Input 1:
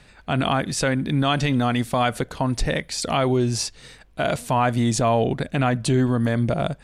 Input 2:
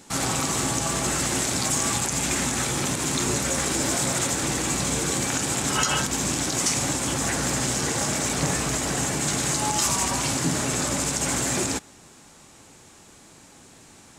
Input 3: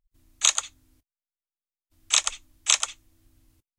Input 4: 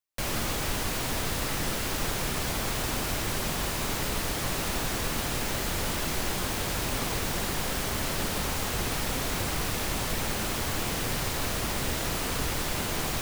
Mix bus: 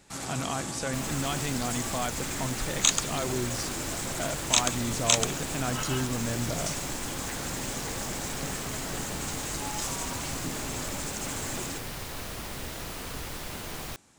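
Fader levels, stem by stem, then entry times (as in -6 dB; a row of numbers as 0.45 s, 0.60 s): -11.5 dB, -11.0 dB, -2.5 dB, -7.5 dB; 0.00 s, 0.00 s, 2.40 s, 0.75 s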